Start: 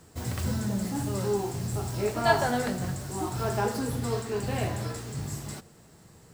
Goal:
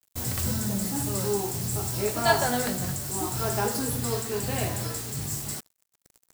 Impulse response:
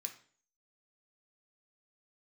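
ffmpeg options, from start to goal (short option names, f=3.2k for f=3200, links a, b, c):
-af "acrusher=bits=6:mix=0:aa=0.5,crystalizer=i=2:c=0"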